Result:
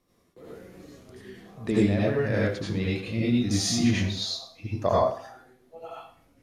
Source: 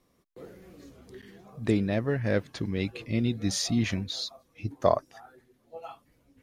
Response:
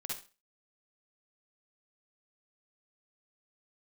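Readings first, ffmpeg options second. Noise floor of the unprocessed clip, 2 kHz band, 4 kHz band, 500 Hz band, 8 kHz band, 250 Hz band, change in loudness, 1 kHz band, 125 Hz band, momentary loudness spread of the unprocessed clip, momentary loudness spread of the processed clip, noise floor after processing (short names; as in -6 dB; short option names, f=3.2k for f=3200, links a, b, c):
-69 dBFS, +3.5 dB, +3.5 dB, +2.5 dB, +3.5 dB, +3.5 dB, +3.5 dB, +3.5 dB, +3.0 dB, 22 LU, 19 LU, -66 dBFS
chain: -filter_complex "[1:a]atrim=start_sample=2205,asetrate=28224,aresample=44100[a];[0:a][a]afir=irnorm=-1:irlink=0"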